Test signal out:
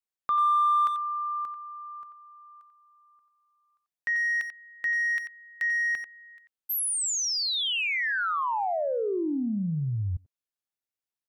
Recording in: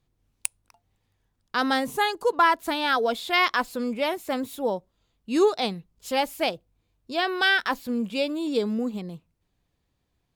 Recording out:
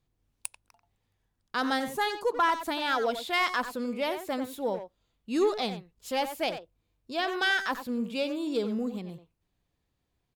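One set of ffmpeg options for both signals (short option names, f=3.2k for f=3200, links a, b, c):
-filter_complex "[0:a]asoftclip=type=tanh:threshold=-12dB,asplit=2[a][b];[b]adelay=90,highpass=300,lowpass=3.4k,asoftclip=type=hard:threshold=-21.5dB,volume=-8dB[c];[a][c]amix=inputs=2:normalize=0,volume=-4dB"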